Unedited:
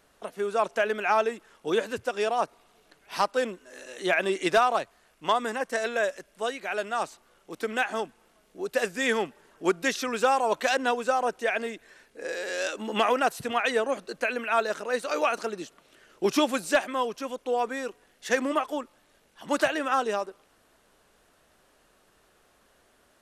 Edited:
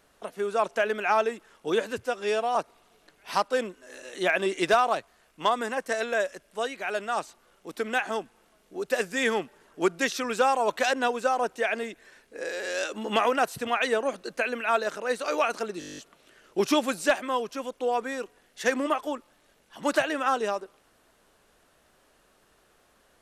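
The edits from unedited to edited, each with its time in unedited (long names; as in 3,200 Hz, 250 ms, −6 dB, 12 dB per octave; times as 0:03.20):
0:02.06–0:02.39: time-stretch 1.5×
0:15.63: stutter 0.02 s, 10 plays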